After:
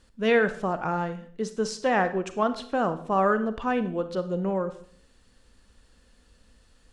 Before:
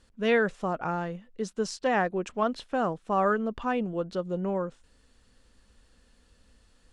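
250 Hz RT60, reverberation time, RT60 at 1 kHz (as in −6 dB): 0.70 s, 0.55 s, 0.55 s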